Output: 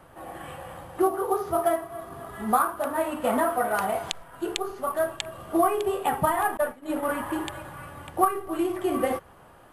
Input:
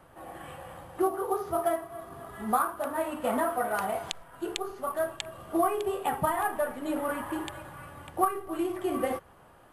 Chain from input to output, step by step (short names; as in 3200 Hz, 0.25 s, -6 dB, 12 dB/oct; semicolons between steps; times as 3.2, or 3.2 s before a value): 6.57–7.03 expander -27 dBFS; gain +4 dB